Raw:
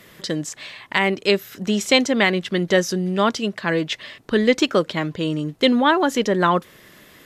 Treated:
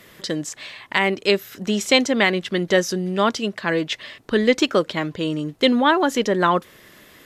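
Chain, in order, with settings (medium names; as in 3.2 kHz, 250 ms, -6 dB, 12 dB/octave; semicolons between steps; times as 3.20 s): peaking EQ 160 Hz -3 dB 0.72 oct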